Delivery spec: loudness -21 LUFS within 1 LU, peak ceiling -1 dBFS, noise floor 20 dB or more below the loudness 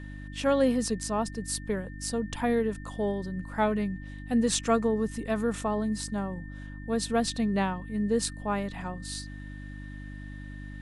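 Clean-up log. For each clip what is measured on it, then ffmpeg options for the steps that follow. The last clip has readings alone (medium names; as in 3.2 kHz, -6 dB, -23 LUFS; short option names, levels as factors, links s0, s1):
hum 50 Hz; highest harmonic 300 Hz; hum level -38 dBFS; steady tone 1.8 kHz; tone level -49 dBFS; loudness -29.5 LUFS; peak level -11.0 dBFS; loudness target -21.0 LUFS
-> -af "bandreject=f=50:t=h:w=4,bandreject=f=100:t=h:w=4,bandreject=f=150:t=h:w=4,bandreject=f=200:t=h:w=4,bandreject=f=250:t=h:w=4,bandreject=f=300:t=h:w=4"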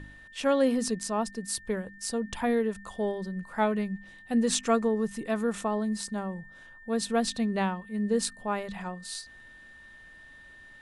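hum not found; steady tone 1.8 kHz; tone level -49 dBFS
-> -af "bandreject=f=1800:w=30"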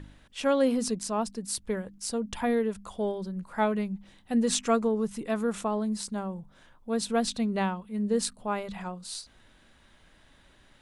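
steady tone not found; loudness -30.0 LUFS; peak level -11.5 dBFS; loudness target -21.0 LUFS
-> -af "volume=2.82"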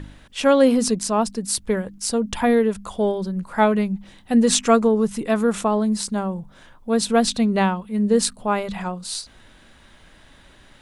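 loudness -21.0 LUFS; peak level -2.5 dBFS; noise floor -51 dBFS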